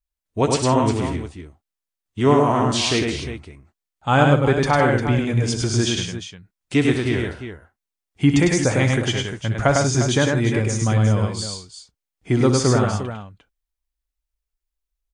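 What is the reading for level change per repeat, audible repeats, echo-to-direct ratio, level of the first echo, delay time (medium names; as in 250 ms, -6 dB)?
no regular repeats, 4, -1.5 dB, -11.5 dB, 63 ms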